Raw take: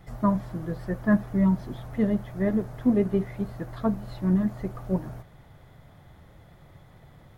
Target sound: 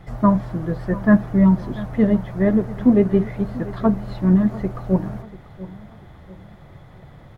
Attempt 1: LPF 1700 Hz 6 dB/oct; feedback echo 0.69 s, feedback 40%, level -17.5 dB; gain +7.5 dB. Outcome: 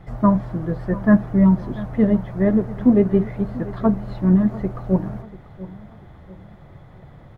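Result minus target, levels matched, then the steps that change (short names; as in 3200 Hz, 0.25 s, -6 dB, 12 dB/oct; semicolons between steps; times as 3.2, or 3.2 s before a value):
4000 Hz band -4.5 dB
change: LPF 3700 Hz 6 dB/oct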